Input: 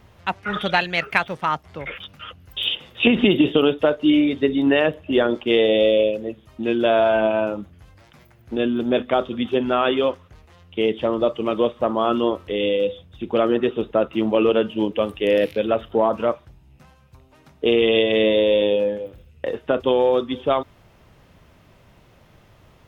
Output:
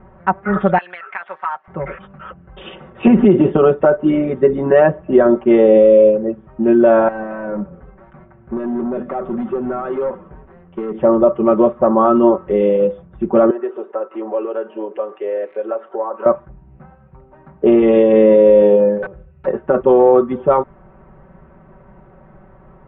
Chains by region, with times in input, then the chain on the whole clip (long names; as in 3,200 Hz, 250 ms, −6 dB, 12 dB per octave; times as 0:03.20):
0:00.78–0:01.68: high-pass filter 1,100 Hz + high-shelf EQ 3,200 Hz +11.5 dB + downward compressor 5 to 1, threshold −24 dBFS
0:07.08–0:10.98: downward compressor 16 to 1, threshold −23 dBFS + echo with shifted repeats 114 ms, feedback 62%, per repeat −36 Hz, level −22 dB + hard clipping −26.5 dBFS
0:13.50–0:16.26: high-pass filter 380 Hz 24 dB per octave + downward compressor 2 to 1, threshold −35 dBFS
0:19.02–0:19.47: parametric band 280 Hz −12 dB 0.27 octaves + notch comb filter 230 Hz + wrap-around overflow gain 28 dB
whole clip: low-pass filter 1,500 Hz 24 dB per octave; comb filter 5.3 ms, depth 88%; boost into a limiter +7.5 dB; level −1 dB